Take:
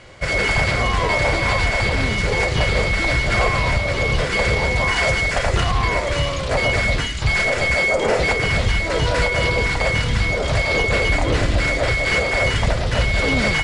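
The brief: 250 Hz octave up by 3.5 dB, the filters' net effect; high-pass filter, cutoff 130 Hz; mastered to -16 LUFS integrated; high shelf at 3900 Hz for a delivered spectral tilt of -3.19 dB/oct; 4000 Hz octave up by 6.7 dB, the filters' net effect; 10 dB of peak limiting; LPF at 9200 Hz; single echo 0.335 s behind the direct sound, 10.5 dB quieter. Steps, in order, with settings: HPF 130 Hz; LPF 9200 Hz; bell 250 Hz +5.5 dB; high shelf 3900 Hz +5 dB; bell 4000 Hz +6 dB; limiter -14 dBFS; echo 0.335 s -10.5 dB; gain +4.5 dB

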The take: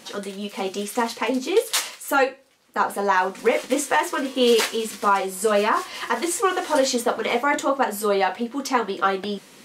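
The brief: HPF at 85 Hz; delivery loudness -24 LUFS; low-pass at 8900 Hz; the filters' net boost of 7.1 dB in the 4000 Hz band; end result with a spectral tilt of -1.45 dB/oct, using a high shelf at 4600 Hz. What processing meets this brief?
HPF 85 Hz; LPF 8900 Hz; bell 4000 Hz +7 dB; high shelf 4600 Hz +5 dB; gain -3 dB

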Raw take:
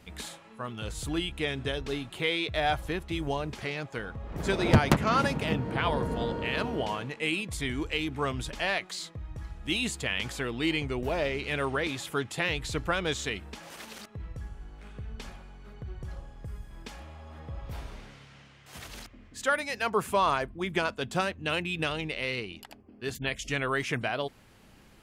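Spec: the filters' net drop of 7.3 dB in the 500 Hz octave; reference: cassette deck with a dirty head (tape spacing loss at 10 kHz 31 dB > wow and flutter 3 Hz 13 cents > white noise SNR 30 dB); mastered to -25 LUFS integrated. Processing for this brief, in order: tape spacing loss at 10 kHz 31 dB; bell 500 Hz -7.5 dB; wow and flutter 3 Hz 13 cents; white noise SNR 30 dB; gain +10.5 dB

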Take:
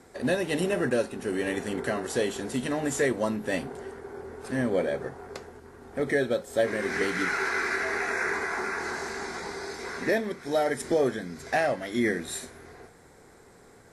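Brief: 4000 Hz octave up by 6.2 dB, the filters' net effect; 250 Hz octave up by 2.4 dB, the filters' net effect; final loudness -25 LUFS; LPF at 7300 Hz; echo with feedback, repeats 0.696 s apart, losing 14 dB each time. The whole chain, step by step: LPF 7300 Hz; bell 250 Hz +3 dB; bell 4000 Hz +8 dB; feedback echo 0.696 s, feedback 20%, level -14 dB; gain +2.5 dB

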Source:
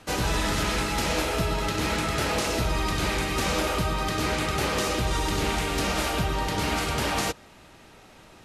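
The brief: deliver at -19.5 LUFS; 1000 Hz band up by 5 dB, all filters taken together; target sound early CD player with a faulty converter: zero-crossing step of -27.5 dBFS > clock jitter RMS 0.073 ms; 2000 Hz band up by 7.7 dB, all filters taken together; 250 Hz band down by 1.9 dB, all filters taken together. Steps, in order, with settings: bell 250 Hz -3 dB; bell 1000 Hz +4 dB; bell 2000 Hz +8.5 dB; zero-crossing step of -27.5 dBFS; clock jitter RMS 0.073 ms; gain +0.5 dB

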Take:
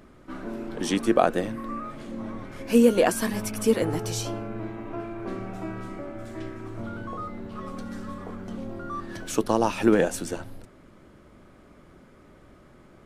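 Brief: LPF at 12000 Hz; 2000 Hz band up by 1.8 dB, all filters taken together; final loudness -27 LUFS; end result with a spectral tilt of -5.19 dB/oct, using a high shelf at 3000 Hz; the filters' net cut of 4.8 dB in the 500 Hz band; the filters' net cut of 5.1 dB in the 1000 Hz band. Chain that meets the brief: LPF 12000 Hz; bell 500 Hz -4.5 dB; bell 1000 Hz -6.5 dB; bell 2000 Hz +6 dB; high shelf 3000 Hz -3.5 dB; gain +3 dB

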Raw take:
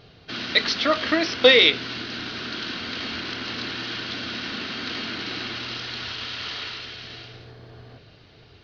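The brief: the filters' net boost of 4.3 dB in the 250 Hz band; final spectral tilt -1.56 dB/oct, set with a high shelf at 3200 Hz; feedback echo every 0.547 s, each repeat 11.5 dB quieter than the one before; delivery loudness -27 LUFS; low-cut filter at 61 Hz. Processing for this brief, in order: HPF 61 Hz; bell 250 Hz +5.5 dB; high shelf 3200 Hz -4.5 dB; feedback echo 0.547 s, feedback 27%, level -11.5 dB; gain -3 dB

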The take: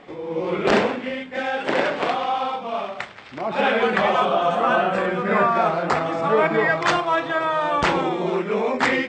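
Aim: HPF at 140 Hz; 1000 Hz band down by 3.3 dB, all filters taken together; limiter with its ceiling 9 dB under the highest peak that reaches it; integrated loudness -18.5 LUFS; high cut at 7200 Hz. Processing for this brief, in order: HPF 140 Hz; LPF 7200 Hz; bell 1000 Hz -4.5 dB; gain +7.5 dB; limiter -9 dBFS

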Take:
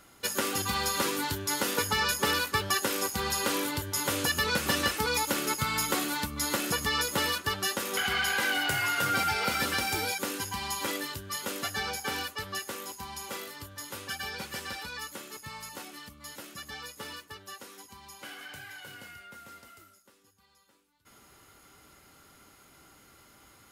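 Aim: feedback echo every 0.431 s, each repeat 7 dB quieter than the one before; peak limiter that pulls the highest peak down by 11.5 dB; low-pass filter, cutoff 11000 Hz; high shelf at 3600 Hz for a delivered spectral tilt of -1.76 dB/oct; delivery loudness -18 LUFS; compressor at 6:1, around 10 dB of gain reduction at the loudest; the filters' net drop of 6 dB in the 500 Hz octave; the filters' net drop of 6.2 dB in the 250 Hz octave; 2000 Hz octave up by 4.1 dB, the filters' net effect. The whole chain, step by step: LPF 11000 Hz; bell 250 Hz -6.5 dB; bell 500 Hz -5.5 dB; bell 2000 Hz +4.5 dB; high shelf 3600 Hz +5 dB; compressor 6:1, threshold -32 dBFS; limiter -29 dBFS; feedback echo 0.431 s, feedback 45%, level -7 dB; gain +18.5 dB

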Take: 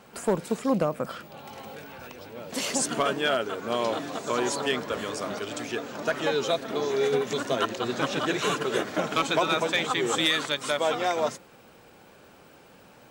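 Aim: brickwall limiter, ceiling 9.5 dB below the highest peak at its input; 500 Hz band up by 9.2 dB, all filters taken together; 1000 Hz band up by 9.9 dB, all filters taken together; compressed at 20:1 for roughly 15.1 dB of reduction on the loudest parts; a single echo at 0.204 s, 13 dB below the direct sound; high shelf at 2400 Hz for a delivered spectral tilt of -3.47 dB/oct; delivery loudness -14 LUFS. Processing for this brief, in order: bell 500 Hz +8.5 dB; bell 1000 Hz +8.5 dB; high shelf 2400 Hz +9 dB; compressor 20:1, threshold -26 dBFS; limiter -22 dBFS; echo 0.204 s -13 dB; gain +18 dB

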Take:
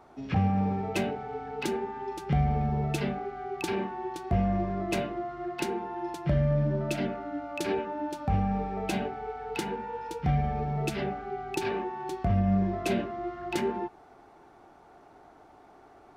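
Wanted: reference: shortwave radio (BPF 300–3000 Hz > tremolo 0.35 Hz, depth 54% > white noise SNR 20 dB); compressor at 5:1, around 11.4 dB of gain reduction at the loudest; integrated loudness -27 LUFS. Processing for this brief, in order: compressor 5:1, threshold -34 dBFS; BPF 300–3000 Hz; tremolo 0.35 Hz, depth 54%; white noise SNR 20 dB; gain +16 dB

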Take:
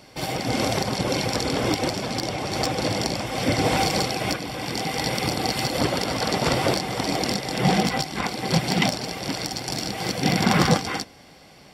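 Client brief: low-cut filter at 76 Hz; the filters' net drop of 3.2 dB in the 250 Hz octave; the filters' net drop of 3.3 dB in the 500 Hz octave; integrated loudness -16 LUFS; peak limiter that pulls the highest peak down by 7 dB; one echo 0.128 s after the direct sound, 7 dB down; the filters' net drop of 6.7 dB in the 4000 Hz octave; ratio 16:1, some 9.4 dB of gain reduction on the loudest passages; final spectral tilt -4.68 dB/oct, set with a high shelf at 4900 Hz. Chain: HPF 76 Hz; bell 250 Hz -3.5 dB; bell 500 Hz -3 dB; bell 4000 Hz -5 dB; high shelf 4900 Hz -7 dB; compressor 16:1, threshold -26 dBFS; limiter -21 dBFS; echo 0.128 s -7 dB; gain +15.5 dB

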